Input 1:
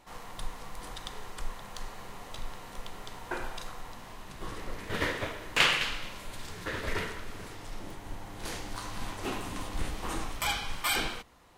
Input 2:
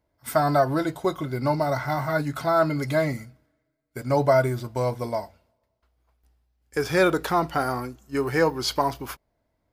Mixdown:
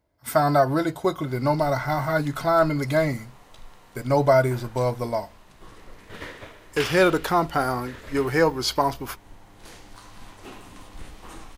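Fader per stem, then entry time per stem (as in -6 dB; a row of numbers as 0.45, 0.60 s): -7.0, +1.5 dB; 1.20, 0.00 s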